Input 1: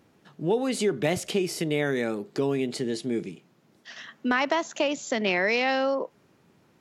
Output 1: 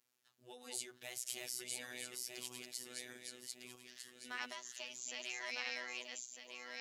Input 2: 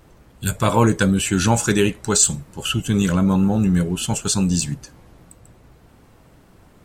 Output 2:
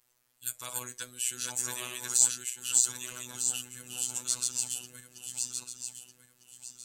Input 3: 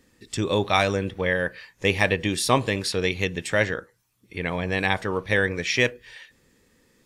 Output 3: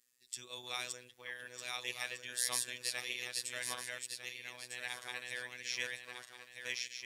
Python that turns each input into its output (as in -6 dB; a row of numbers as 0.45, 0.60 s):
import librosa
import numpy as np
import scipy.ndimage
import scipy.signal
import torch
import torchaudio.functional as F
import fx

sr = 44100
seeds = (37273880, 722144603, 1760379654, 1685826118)

y = fx.reverse_delay_fb(x, sr, ms=626, feedback_pct=51, wet_db=-1)
y = scipy.signal.lfilter([1.0, -0.97], [1.0], y)
y = fx.robotise(y, sr, hz=124.0)
y = F.gain(torch.from_numpy(y), -5.5).numpy()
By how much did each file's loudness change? -18.0, -11.5, -16.0 LU